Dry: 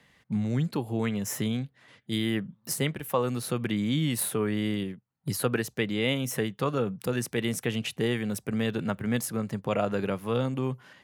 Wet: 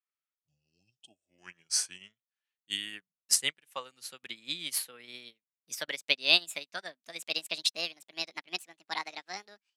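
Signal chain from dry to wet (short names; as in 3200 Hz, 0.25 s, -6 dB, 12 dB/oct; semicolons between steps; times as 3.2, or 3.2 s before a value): speed glide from 65% -> 161%; weighting filter ITU-R 468; spectral repair 0.46–1.26, 850–2500 Hz before; bell 2700 Hz +2.5 dB 0.96 oct; upward expander 2.5:1, over -47 dBFS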